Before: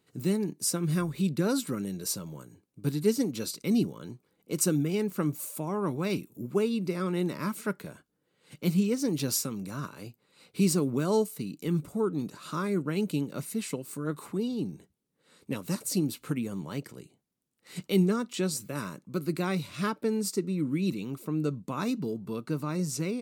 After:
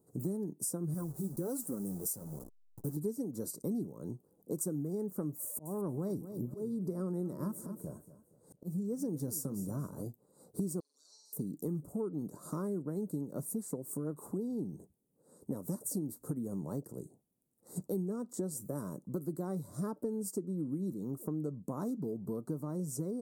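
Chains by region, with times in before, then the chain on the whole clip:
0:00.94–0:02.97: hold until the input has moved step −42 dBFS + high-shelf EQ 6,300 Hz +10.5 dB + flanger 1.3 Hz, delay 3.4 ms, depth 6.1 ms, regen −38%
0:05.42–0:10.02: low-shelf EQ 92 Hz +10 dB + volume swells 381 ms + repeating echo 234 ms, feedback 32%, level −15.5 dB
0:10.80–0:11.33: flat-topped band-pass 4,600 Hz, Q 3.1 + flutter between parallel walls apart 8 metres, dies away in 1.1 s + multiband upward and downward compressor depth 70%
whole clip: Chebyshev band-stop filter 660–9,200 Hz, order 2; dynamic equaliser 2,000 Hz, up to +8 dB, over −57 dBFS, Q 1.2; downward compressor 5 to 1, threshold −38 dBFS; level +3.5 dB

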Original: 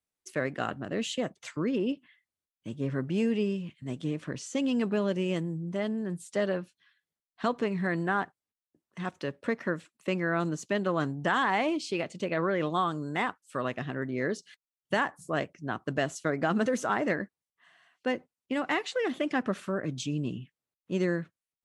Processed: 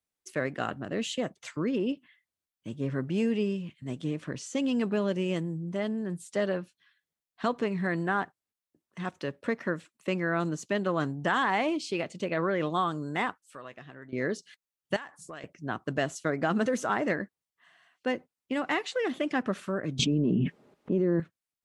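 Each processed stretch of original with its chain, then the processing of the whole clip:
0:13.44–0:14.13: downward compressor 1.5 to 1, threshold −57 dBFS + parametric band 150 Hz −5.5 dB 2.9 octaves + double-tracking delay 14 ms −12.5 dB
0:14.96–0:15.44: low-pass filter 8,700 Hz + tilt shelving filter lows −5.5 dB, about 1,100 Hz + downward compressor 5 to 1, threshold −39 dBFS
0:19.99–0:21.20: resonant band-pass 330 Hz, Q 0.92 + comb filter 4.9 ms, depth 30% + envelope flattener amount 100%
whole clip: no processing

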